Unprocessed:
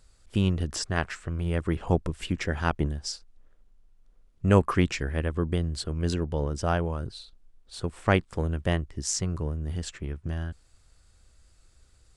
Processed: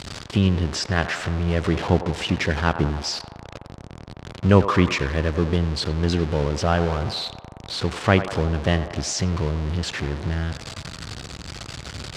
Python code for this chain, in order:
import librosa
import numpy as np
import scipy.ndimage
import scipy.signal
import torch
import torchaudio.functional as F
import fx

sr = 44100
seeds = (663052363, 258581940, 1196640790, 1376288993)

y = x + 0.5 * 10.0 ** (-27.5 / 20.0) * np.sign(x)
y = scipy.signal.sosfilt(scipy.signal.cheby1(2, 1.0, [100.0, 4500.0], 'bandpass', fs=sr, output='sos'), y)
y = fx.echo_banded(y, sr, ms=93, feedback_pct=78, hz=830.0, wet_db=-10)
y = y * librosa.db_to_amplitude(4.5)